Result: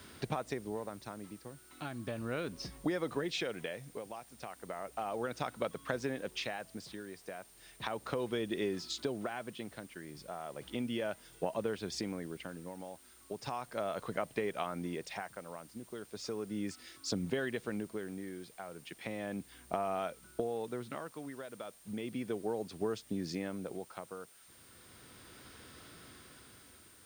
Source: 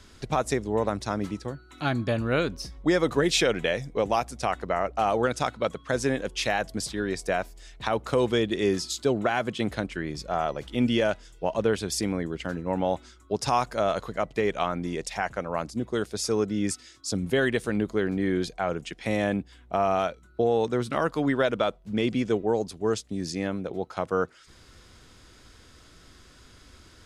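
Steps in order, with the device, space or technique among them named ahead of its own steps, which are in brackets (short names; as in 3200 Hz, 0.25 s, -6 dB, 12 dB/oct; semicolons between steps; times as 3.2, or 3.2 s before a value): medium wave at night (BPF 110–4300 Hz; compressor 6:1, threshold -33 dBFS, peak gain reduction 14 dB; tremolo 0.35 Hz, depth 71%; whine 9000 Hz -63 dBFS; white noise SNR 23 dB); gain +1 dB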